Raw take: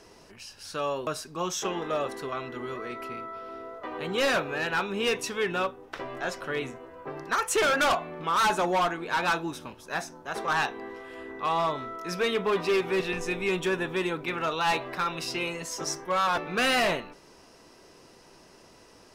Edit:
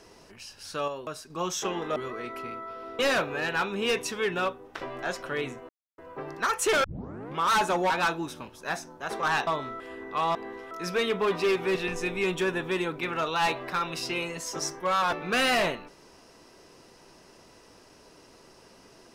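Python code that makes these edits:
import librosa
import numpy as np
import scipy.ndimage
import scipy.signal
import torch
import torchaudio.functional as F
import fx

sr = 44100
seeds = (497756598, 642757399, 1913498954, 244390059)

y = fx.edit(x, sr, fx.clip_gain(start_s=0.88, length_s=0.42, db=-5.5),
    fx.cut(start_s=1.96, length_s=0.66),
    fx.cut(start_s=3.65, length_s=0.52),
    fx.insert_silence(at_s=6.87, length_s=0.29),
    fx.tape_start(start_s=7.73, length_s=0.53),
    fx.cut(start_s=8.79, length_s=0.36),
    fx.swap(start_s=10.72, length_s=0.36, other_s=11.63, other_length_s=0.33), tone=tone)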